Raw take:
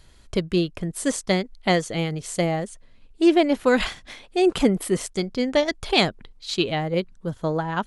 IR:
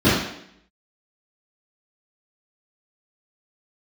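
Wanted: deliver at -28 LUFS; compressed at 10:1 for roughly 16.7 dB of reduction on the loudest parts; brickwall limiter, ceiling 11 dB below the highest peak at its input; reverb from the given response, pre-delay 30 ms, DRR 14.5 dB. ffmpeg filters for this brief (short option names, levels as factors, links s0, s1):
-filter_complex "[0:a]acompressor=threshold=0.0316:ratio=10,alimiter=level_in=1.88:limit=0.0631:level=0:latency=1,volume=0.531,asplit=2[s0][s1];[1:a]atrim=start_sample=2205,adelay=30[s2];[s1][s2]afir=irnorm=-1:irlink=0,volume=0.0141[s3];[s0][s3]amix=inputs=2:normalize=0,volume=3.35"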